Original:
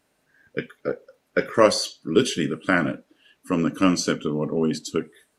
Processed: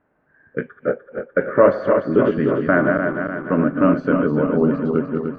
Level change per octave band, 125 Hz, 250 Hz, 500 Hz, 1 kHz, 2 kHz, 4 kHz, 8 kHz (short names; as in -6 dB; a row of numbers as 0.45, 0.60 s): +5.5 dB, +5.5 dB, +6.5 dB, +4.0 dB, +3.5 dB, under -15 dB, under -35 dB